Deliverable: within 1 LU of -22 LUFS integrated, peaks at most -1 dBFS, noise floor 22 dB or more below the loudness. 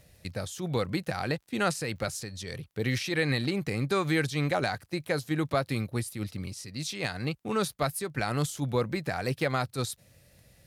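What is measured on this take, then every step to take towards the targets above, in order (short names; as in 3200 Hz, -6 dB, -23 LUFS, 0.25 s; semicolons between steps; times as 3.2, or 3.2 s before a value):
ticks 27/s; loudness -31.0 LUFS; peak -14.5 dBFS; loudness target -22.0 LUFS
-> de-click; gain +9 dB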